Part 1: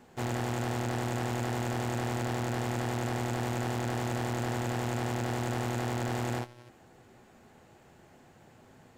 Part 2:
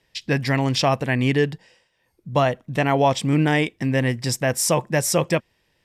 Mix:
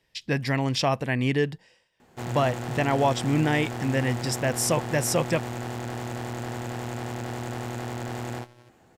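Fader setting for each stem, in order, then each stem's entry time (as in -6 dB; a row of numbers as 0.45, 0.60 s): -1.0, -4.5 dB; 2.00, 0.00 s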